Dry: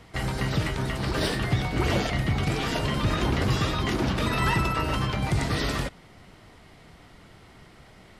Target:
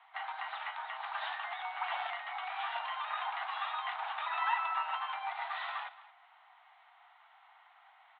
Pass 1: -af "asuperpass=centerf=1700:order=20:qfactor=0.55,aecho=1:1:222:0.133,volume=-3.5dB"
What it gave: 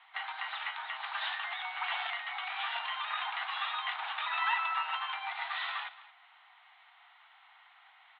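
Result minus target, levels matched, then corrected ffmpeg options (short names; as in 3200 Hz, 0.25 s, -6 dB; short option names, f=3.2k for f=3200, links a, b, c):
1000 Hz band -3.0 dB
-af "asuperpass=centerf=1700:order=20:qfactor=0.55,tiltshelf=f=1.1k:g=9,aecho=1:1:222:0.133,volume=-3.5dB"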